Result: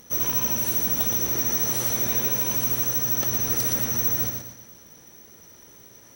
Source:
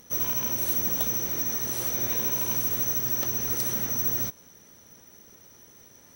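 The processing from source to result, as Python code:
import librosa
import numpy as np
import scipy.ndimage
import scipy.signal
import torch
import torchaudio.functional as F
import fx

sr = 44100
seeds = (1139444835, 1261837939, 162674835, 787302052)

p1 = fx.rider(x, sr, range_db=10, speed_s=0.5)
p2 = p1 + fx.echo_feedback(p1, sr, ms=118, feedback_pct=42, wet_db=-4.5, dry=0)
y = p2 * 10.0 ** (2.5 / 20.0)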